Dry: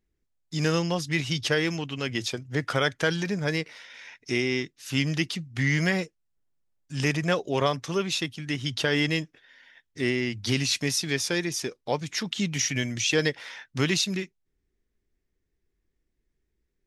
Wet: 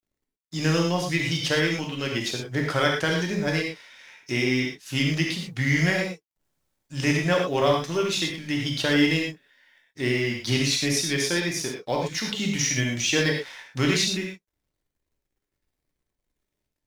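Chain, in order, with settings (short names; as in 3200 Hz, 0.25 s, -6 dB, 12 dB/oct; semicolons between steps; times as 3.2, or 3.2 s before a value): G.711 law mismatch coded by A; non-linear reverb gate 0.14 s flat, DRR -0.5 dB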